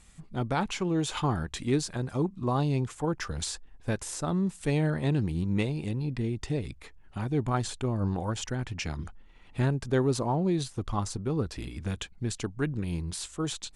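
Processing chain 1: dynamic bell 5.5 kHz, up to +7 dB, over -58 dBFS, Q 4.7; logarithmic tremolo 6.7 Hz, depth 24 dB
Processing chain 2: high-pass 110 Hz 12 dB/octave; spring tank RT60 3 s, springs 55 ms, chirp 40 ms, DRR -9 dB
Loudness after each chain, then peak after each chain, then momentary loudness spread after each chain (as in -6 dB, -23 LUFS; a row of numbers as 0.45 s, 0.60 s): -37.0 LUFS, -22.0 LUFS; -16.5 dBFS, -5.5 dBFS; 9 LU, 8 LU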